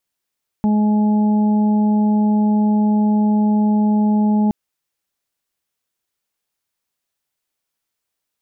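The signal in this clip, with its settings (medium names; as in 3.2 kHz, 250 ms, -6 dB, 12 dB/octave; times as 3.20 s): steady additive tone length 3.87 s, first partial 211 Hz, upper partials -18/-20/-14 dB, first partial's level -12.5 dB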